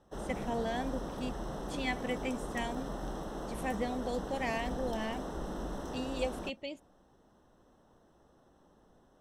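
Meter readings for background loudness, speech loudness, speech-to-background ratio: -41.0 LUFS, -38.5 LUFS, 2.5 dB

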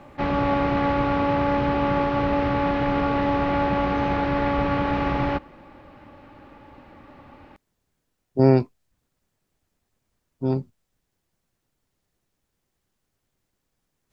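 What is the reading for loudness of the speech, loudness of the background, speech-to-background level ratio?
-22.5 LUFS, -23.0 LUFS, 0.5 dB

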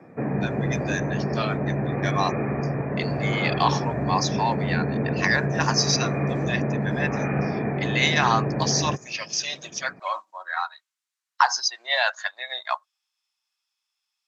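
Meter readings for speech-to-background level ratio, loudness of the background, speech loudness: 0.0 dB, -26.5 LUFS, -26.5 LUFS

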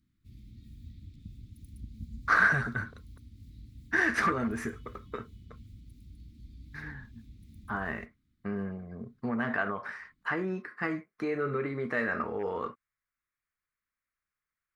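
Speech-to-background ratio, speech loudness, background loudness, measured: 20.0 dB, -31.0 LUFS, -51.0 LUFS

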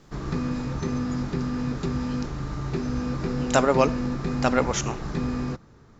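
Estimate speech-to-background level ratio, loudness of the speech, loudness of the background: 4.5 dB, -24.5 LUFS, -29.0 LUFS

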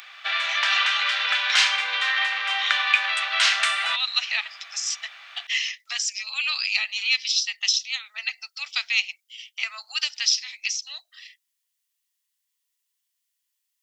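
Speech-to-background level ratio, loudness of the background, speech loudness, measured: -4.5 dB, -21.0 LUFS, -25.5 LUFS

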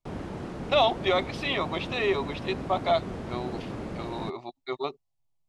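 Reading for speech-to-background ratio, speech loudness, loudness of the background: 8.5 dB, -28.5 LUFS, -37.0 LUFS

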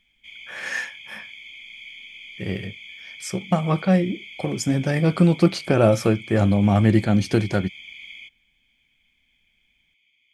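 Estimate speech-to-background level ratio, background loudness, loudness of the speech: 18.0 dB, -39.0 LUFS, -21.0 LUFS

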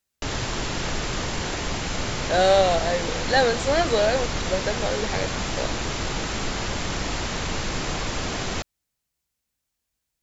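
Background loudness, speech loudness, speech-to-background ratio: -28.0 LUFS, -23.0 LUFS, 5.0 dB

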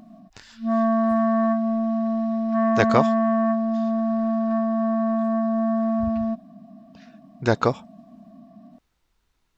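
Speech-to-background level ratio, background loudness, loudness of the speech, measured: -1.5 dB, -22.5 LUFS, -24.0 LUFS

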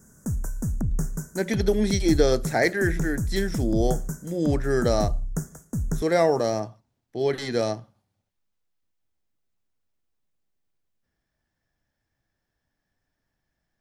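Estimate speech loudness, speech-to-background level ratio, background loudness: -25.0 LUFS, 6.0 dB, -31.0 LUFS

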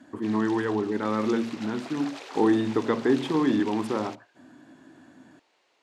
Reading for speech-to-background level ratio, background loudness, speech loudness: 16.0 dB, -42.5 LUFS, -26.5 LUFS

